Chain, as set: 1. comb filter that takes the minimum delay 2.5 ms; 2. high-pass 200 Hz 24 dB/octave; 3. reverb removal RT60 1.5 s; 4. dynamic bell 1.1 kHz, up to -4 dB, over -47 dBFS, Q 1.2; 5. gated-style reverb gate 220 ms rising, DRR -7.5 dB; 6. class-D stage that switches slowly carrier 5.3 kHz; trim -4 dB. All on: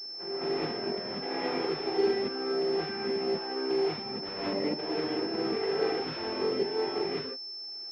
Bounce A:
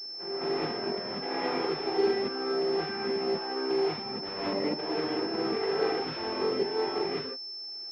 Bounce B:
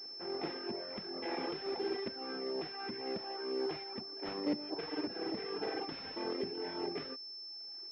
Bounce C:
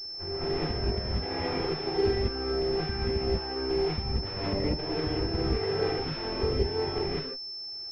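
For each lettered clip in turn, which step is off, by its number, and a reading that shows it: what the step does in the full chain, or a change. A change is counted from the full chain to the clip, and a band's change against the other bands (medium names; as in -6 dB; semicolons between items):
4, 1 kHz band +2.0 dB; 5, momentary loudness spread change -1 LU; 2, 125 Hz band +14.0 dB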